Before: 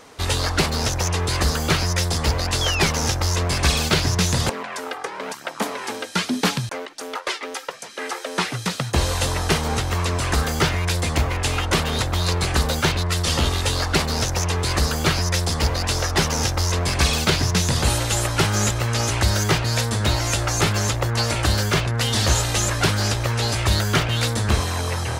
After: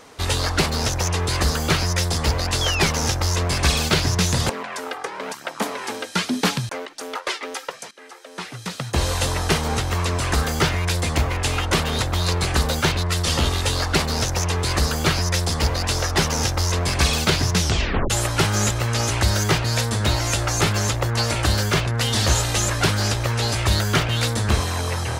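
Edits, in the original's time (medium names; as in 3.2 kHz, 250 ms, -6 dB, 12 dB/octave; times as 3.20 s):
7.91–9.08 s: fade in quadratic, from -15 dB
17.60 s: tape stop 0.50 s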